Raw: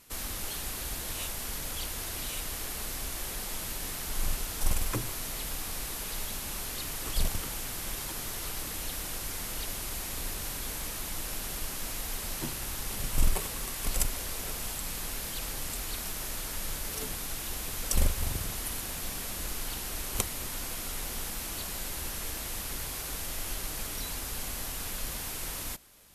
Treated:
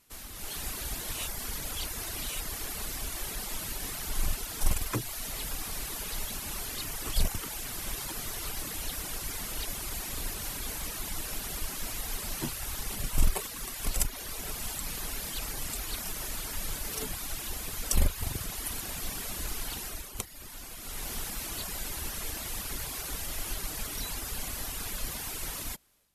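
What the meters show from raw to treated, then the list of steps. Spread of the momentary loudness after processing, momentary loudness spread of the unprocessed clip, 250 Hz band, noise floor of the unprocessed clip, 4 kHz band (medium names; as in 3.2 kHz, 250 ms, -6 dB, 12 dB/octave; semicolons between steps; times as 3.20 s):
4 LU, 4 LU, 0.0 dB, -38 dBFS, -0.5 dB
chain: level rider gain up to 10 dB; reverb removal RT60 0.9 s; band-stop 520 Hz, Q 17; trim -7.5 dB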